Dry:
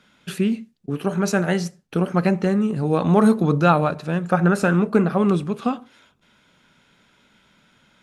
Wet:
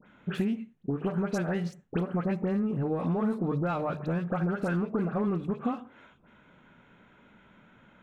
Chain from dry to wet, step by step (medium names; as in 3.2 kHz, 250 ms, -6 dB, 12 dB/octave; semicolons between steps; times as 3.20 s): local Wiener filter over 9 samples; treble shelf 3.3 kHz -8.5 dB; hum notches 50/100/150 Hz; in parallel at +3 dB: peak limiter -11.5 dBFS, peak gain reduction 8 dB; on the sum: compression 6:1, threshold -21 dBFS, peak gain reduction 14.5 dB; saturation -12.5 dBFS, distortion -24 dB; phase dispersion highs, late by 69 ms, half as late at 1.9 kHz; trim -4.5 dB